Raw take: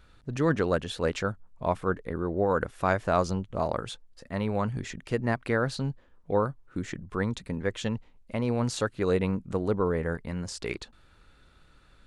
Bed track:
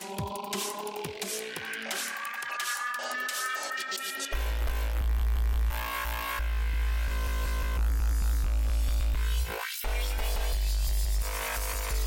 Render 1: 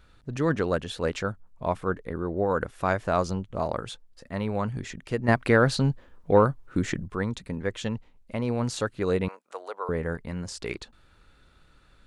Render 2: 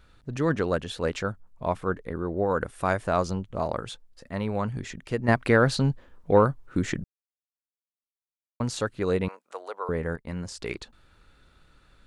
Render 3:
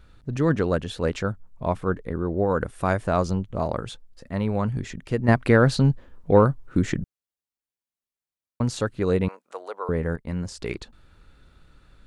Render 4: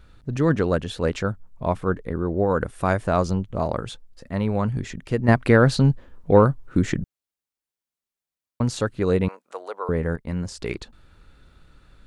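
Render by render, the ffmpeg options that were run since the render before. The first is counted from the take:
ffmpeg -i in.wav -filter_complex "[0:a]asettb=1/sr,asplit=3[link_01][link_02][link_03];[link_01]atrim=end=5.284[link_04];[link_02]atrim=start=5.28:end=7.08,asetpts=PTS-STARTPTS,afade=type=in:duration=0.004:curve=qsin,afade=type=out:start_time=1.796:duration=0.004:curve=qsin,acontrast=85[link_05];[link_03]atrim=start=7.076[link_06];[link_04][link_05]acrossfade=duration=0.004:curve1=hsin:curve2=qsin[link_07];[link_07][link_06]acrossfade=duration=0.004:curve1=qsin:curve2=hsin,asettb=1/sr,asplit=3[link_08][link_09][link_10];[link_08]atrim=end=9.284[link_11];[link_09]atrim=start=9.28:end=9.89,asetpts=PTS-STARTPTS,afade=type=in:duration=0.004:curve=qsin,afade=type=out:start_time=0.606:duration=0.004:curve=qsin,highpass=frequency=600:width=0.5412,highpass=frequency=600:width=1.3066[link_12];[link_10]atrim=start=9.886[link_13];[link_11][link_12]acrossfade=duration=0.004:curve1=hsin:curve2=qsin[link_14];[link_14][link_13]acrossfade=duration=0.004:curve1=qsin:curve2=hsin" out.wav
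ffmpeg -i in.wav -filter_complex "[0:a]asettb=1/sr,asplit=3[link_01][link_02][link_03];[link_01]atrim=end=2.654[link_04];[link_02]atrim=start=2.65:end=3.07,asetpts=PTS-STARTPTS,afade=type=in:duration=0.004:curve=qsin,afade=type=out:start_time=0.416:duration=0.004:curve=qsin,equalizer=frequency=9100:width=3.1:gain=10[link_05];[link_03]atrim=start=3.066[link_06];[link_04][link_05]acrossfade=duration=0.004:curve1=hsin:curve2=qsin[link_07];[link_07][link_06]acrossfade=duration=0.004:curve1=qsin:curve2=hsin,asettb=1/sr,asplit=3[link_08][link_09][link_10];[link_08]atrim=end=10.164[link_11];[link_09]atrim=start=10.16:end=10.59,asetpts=PTS-STARTPTS,afade=type=in:duration=0.004:curve=qsin,afade=type=out:start_time=0.426:duration=0.004:curve=qsin,agate=range=-33dB:threshold=-37dB:ratio=3:release=100:detection=peak[link_12];[link_10]atrim=start=10.586[link_13];[link_11][link_12]acrossfade=duration=0.004:curve1=hsin:curve2=qsin[link_14];[link_14][link_13]acrossfade=duration=0.004:curve1=qsin:curve2=hsin,asplit=3[link_15][link_16][link_17];[link_15]atrim=end=7.04,asetpts=PTS-STARTPTS,afade=type=out:start_time=7.036:duration=0.004:curve=hsin[link_18];[link_16]atrim=start=7.04:end=8.6,asetpts=PTS-STARTPTS,volume=0[link_19];[link_17]atrim=start=8.6,asetpts=PTS-STARTPTS,afade=type=in:duration=0.004:curve=hsin[link_20];[link_18][link_19][link_20]concat=n=3:v=0:a=1" out.wav
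ffmpeg -i in.wav -af "lowshelf=frequency=380:gain=6" out.wav
ffmpeg -i in.wav -af "volume=1.5dB" out.wav

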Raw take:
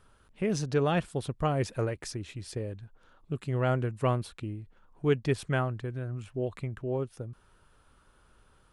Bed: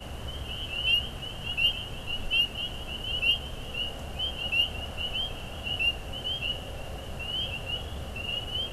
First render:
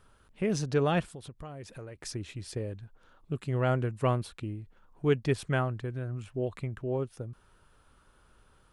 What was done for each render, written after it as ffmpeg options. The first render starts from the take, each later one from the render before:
ffmpeg -i in.wav -filter_complex "[0:a]asplit=3[link_01][link_02][link_03];[link_01]afade=type=out:start_time=1.09:duration=0.02[link_04];[link_02]acompressor=threshold=-42dB:ratio=4:attack=3.2:release=140:knee=1:detection=peak,afade=type=in:start_time=1.09:duration=0.02,afade=type=out:start_time=2.04:duration=0.02[link_05];[link_03]afade=type=in:start_time=2.04:duration=0.02[link_06];[link_04][link_05][link_06]amix=inputs=3:normalize=0" out.wav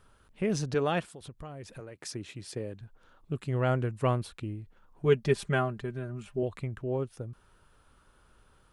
ffmpeg -i in.wav -filter_complex "[0:a]asettb=1/sr,asplit=3[link_01][link_02][link_03];[link_01]atrim=end=0.744[link_04];[link_02]atrim=start=0.74:end=1.21,asetpts=PTS-STARTPTS,afade=type=in:duration=0.004:curve=qsin,afade=type=out:start_time=0.466:duration=0.004:curve=qsin,highpass=frequency=240:poles=1[link_05];[link_03]atrim=start=1.206[link_06];[link_04][link_05]acrossfade=duration=0.004:curve1=hsin:curve2=qsin[link_07];[link_07][link_06]acrossfade=duration=0.004:curve1=qsin:curve2=hsin,asettb=1/sr,asplit=3[link_08][link_09][link_10];[link_08]atrim=end=1.804[link_11];[link_09]atrim=start=1.8:end=2.81,asetpts=PTS-STARTPTS,afade=type=in:duration=0.004:curve=qsin,afade=type=out:start_time=1.006:duration=0.004:curve=qsin,highpass=130[link_12];[link_10]atrim=start=2.806[link_13];[link_11][link_12]acrossfade=duration=0.004:curve1=hsin:curve2=qsin[link_14];[link_14][link_13]acrossfade=duration=0.004:curve1=qsin:curve2=hsin,asettb=1/sr,asplit=3[link_15][link_16][link_17];[link_15]atrim=end=5.054[link_18];[link_16]atrim=start=5.05:end=6.43,asetpts=PTS-STARTPTS,afade=type=in:duration=0.004:curve=qsin,afade=type=out:start_time=1.376:duration=0.004:curve=qsin,aecho=1:1:5:0.65,atrim=end_sample=60858[link_19];[link_17]atrim=start=6.426[link_20];[link_18][link_19]acrossfade=duration=0.004:curve1=hsin:curve2=qsin[link_21];[link_21][link_20]acrossfade=duration=0.004:curve1=qsin:curve2=hsin" out.wav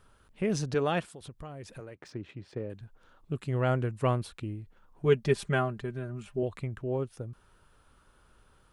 ffmpeg -i in.wav -filter_complex "[0:a]asettb=1/sr,asplit=3[link_01][link_02][link_03];[link_01]atrim=end=1.954[link_04];[link_02]atrim=start=1.95:end=2.7,asetpts=PTS-STARTPTS,afade=type=in:duration=0.004:curve=qsin,afade=type=out:start_time=0.746:duration=0.004:curve=qsin,adynamicsmooth=sensitivity=4:basefreq=2100[link_05];[link_03]atrim=start=2.696[link_06];[link_04][link_05]acrossfade=duration=0.004:curve1=hsin:curve2=qsin[link_07];[link_07][link_06]acrossfade=duration=0.004:curve1=qsin:curve2=hsin" out.wav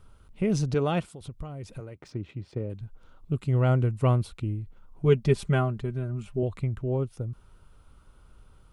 ffmpeg -i in.wav -af "lowshelf=frequency=180:gain=11,bandreject=frequency=1700:width=6.5" out.wav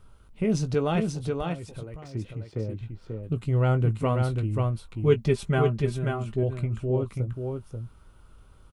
ffmpeg -i in.wav -filter_complex "[0:a]asplit=2[link_01][link_02];[link_02]adelay=18,volume=-10dB[link_03];[link_01][link_03]amix=inputs=2:normalize=0,aecho=1:1:536:0.596" out.wav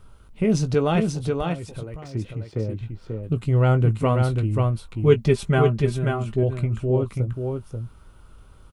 ffmpeg -i in.wav -af "volume=4.5dB" out.wav

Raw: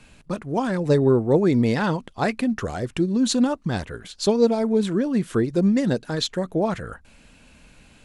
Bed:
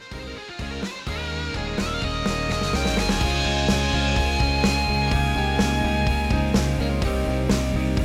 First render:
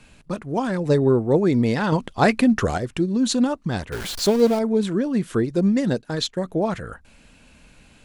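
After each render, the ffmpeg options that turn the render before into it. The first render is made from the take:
ffmpeg -i in.wav -filter_complex "[0:a]asettb=1/sr,asplit=3[link_01][link_02][link_03];[link_01]atrim=end=1.924[link_04];[link_02]atrim=start=1.92:end=2.78,asetpts=PTS-STARTPTS,afade=type=in:duration=0.004:curve=qsin,afade=type=out:start_time=0.856:duration=0.004:curve=qsin,acontrast=63[link_05];[link_03]atrim=start=2.776[link_06];[link_04][link_05]acrossfade=duration=0.004:curve1=hsin:curve2=qsin[link_07];[link_07][link_06]acrossfade=duration=0.004:curve1=qsin:curve2=hsin,asettb=1/sr,asplit=3[link_08][link_09][link_10];[link_08]atrim=end=3.924[link_11];[link_09]atrim=start=3.92:end=4.59,asetpts=PTS-STARTPTS,afade=type=in:duration=0.004:curve=qsin,afade=type=out:start_time=0.666:duration=0.004:curve=qsin,aeval=exprs='val(0)+0.5*0.0473*sgn(val(0))':channel_layout=same[link_12];[link_10]atrim=start=4.586[link_13];[link_11][link_12]acrossfade=duration=0.004:curve1=hsin:curve2=qsin[link_14];[link_14][link_13]acrossfade=duration=0.004:curve1=qsin:curve2=hsin,asplit=3[link_15][link_16][link_17];[link_15]afade=type=out:start_time=5.5:duration=0.02[link_18];[link_16]agate=range=-10dB:threshold=-37dB:ratio=16:release=100:detection=peak,afade=type=in:start_time=5.5:duration=0.02,afade=type=out:start_time=6.44:duration=0.02[link_19];[link_17]afade=type=in:start_time=6.44:duration=0.02[link_20];[link_18][link_19][link_20]amix=inputs=3:normalize=0" out.wav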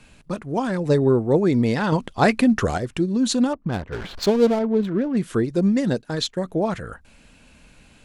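ffmpeg -i in.wav -filter_complex "[0:a]asettb=1/sr,asplit=3[link_01][link_02][link_03];[link_01]atrim=end=3.534[link_04];[link_02]atrim=start=3.53:end=5.17,asetpts=PTS-STARTPTS,afade=type=in:duration=0.004:curve=qsin,afade=type=out:start_time=1.636:duration=0.004:curve=qsin,adynamicsmooth=sensitivity=3:basefreq=1100[link_05];[link_03]atrim=start=5.166[link_06];[link_04][link_05]acrossfade=duration=0.004:curve1=hsin:curve2=qsin[link_07];[link_07][link_06]acrossfade=duration=0.004:curve1=qsin:curve2=hsin" out.wav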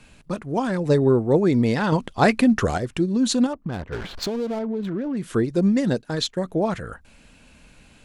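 ffmpeg -i in.wav -filter_complex "[0:a]asettb=1/sr,asplit=3[link_01][link_02][link_03];[link_01]atrim=end=3.464[link_04];[link_02]atrim=start=3.46:end=5.28,asetpts=PTS-STARTPTS,afade=type=in:duration=0.004:curve=qsin,afade=type=out:start_time=1.816:duration=0.004:curve=qsin,acompressor=threshold=-23dB:ratio=6:attack=3.2:release=140:knee=1:detection=peak[link_05];[link_03]atrim=start=5.276[link_06];[link_04][link_05]acrossfade=duration=0.004:curve1=hsin:curve2=qsin[link_07];[link_07][link_06]acrossfade=duration=0.004:curve1=qsin:curve2=hsin" out.wav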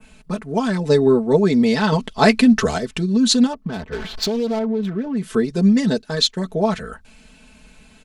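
ffmpeg -i in.wav -af "adynamicequalizer=threshold=0.00708:dfrequency=4500:dqfactor=0.92:tfrequency=4500:tqfactor=0.92:attack=5:release=100:ratio=0.375:range=3.5:mode=boostabove:tftype=bell,aecho=1:1:4.6:0.87" out.wav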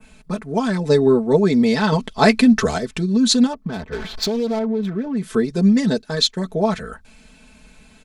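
ffmpeg -i in.wav -af "bandreject=frequency=2900:width=15" out.wav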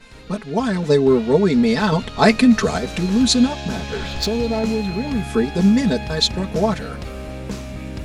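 ffmpeg -i in.wav -i bed.wav -filter_complex "[1:a]volume=-8dB[link_01];[0:a][link_01]amix=inputs=2:normalize=0" out.wav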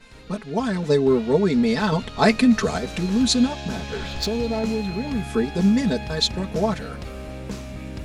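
ffmpeg -i in.wav -af "volume=-3.5dB" out.wav

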